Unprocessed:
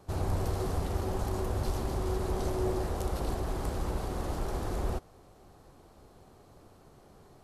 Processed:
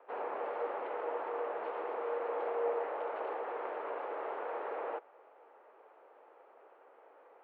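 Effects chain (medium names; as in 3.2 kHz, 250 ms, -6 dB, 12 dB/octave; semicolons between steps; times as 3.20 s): mistuned SSB +100 Hz 310–2500 Hz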